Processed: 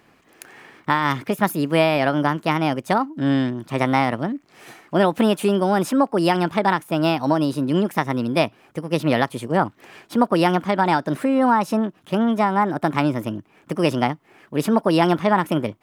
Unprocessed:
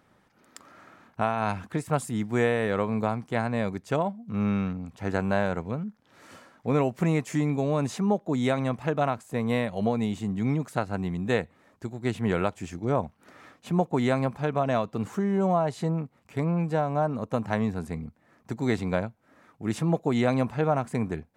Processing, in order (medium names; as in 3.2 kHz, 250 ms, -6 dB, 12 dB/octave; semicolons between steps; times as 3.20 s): speed mistake 33 rpm record played at 45 rpm; trim +7 dB